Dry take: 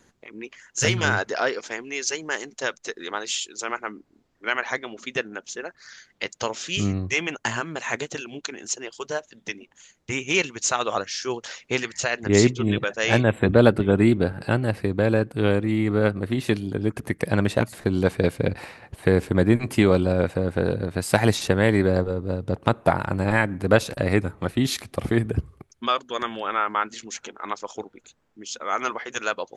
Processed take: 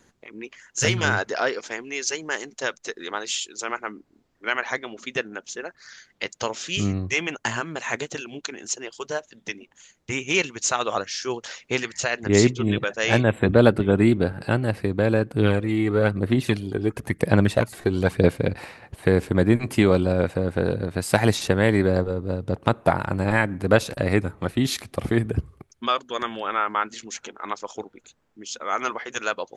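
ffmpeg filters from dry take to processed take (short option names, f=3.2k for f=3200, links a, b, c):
-filter_complex "[0:a]asettb=1/sr,asplit=3[a][b][c];[a]atrim=end=15.314[d];[b]atrim=start=15.31:end=18.37,asetpts=PTS-STARTPTS,afade=t=in:d=0.004:c=qsin,afade=t=out:st=3.056:d=0.004:c=qsin,aphaser=in_gain=1:out_gain=1:delay=2.7:decay=0.4:speed=1:type=sinusoidal[e];[c]atrim=start=18.366[f];[d][e]acrossfade=d=0.004:c1=hsin:c2=qsin[g];[g][f]acrossfade=d=0.004:c1=qsin:c2=hsin"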